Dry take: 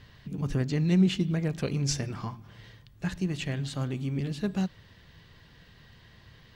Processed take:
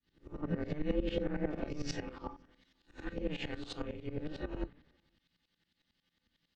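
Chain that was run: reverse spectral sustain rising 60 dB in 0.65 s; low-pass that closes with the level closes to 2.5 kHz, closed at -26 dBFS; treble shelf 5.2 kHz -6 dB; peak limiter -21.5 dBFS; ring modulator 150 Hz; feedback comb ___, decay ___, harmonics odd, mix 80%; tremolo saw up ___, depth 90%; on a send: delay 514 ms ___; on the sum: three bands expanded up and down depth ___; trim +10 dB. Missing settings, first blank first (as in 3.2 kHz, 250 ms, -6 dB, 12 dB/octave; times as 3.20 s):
170 Hz, 0.17 s, 11 Hz, -23.5 dB, 100%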